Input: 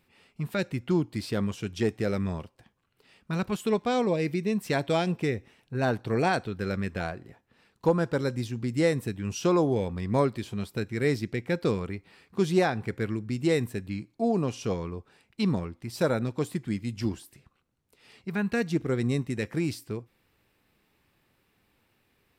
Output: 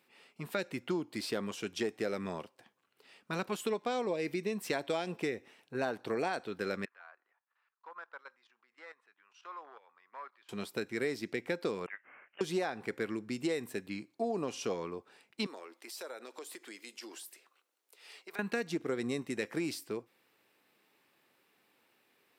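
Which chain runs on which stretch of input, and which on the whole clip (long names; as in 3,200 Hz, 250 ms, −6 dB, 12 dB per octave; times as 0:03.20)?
0:06.85–0:10.49: output level in coarse steps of 13 dB + hard clipping −21 dBFS + four-pole ladder band-pass 1,400 Hz, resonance 45%
0:11.86–0:12.41: high-pass filter 1,500 Hz 24 dB per octave + high-shelf EQ 3,000 Hz +5.5 dB + voice inversion scrambler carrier 4,000 Hz
0:15.46–0:18.39: high-pass filter 330 Hz 24 dB per octave + spectral tilt +1.5 dB per octave + downward compressor 4 to 1, threshold −43 dBFS
whole clip: high-pass filter 310 Hz 12 dB per octave; downward compressor 6 to 1, threshold −30 dBFS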